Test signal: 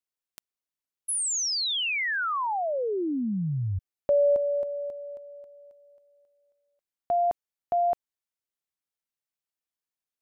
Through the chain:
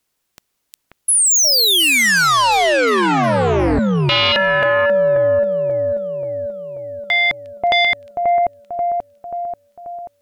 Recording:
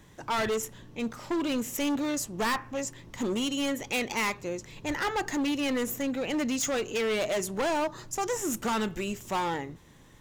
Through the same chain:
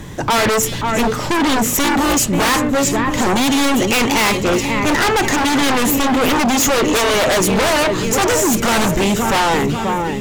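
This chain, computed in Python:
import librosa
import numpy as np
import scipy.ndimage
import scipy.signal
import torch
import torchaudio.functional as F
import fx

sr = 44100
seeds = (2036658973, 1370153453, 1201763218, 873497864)

y = fx.low_shelf(x, sr, hz=460.0, db=4.5)
y = fx.echo_split(y, sr, split_hz=2600.0, low_ms=535, high_ms=358, feedback_pct=52, wet_db=-11.0)
y = fx.fold_sine(y, sr, drive_db=12, ceiling_db=-15.5)
y = F.gain(torch.from_numpy(y), 4.0).numpy()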